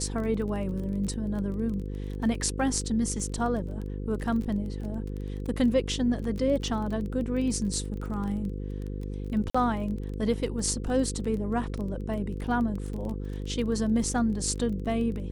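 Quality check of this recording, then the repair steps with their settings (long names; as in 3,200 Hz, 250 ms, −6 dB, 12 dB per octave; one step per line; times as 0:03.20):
mains buzz 50 Hz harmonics 10 −34 dBFS
surface crackle 22 per second −34 dBFS
0:09.50–0:09.54: drop-out 45 ms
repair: click removal
hum removal 50 Hz, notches 10
repair the gap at 0:09.50, 45 ms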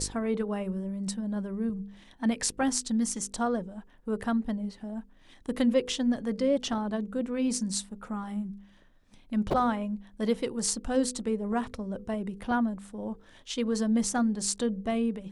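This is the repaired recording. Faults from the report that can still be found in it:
none of them is left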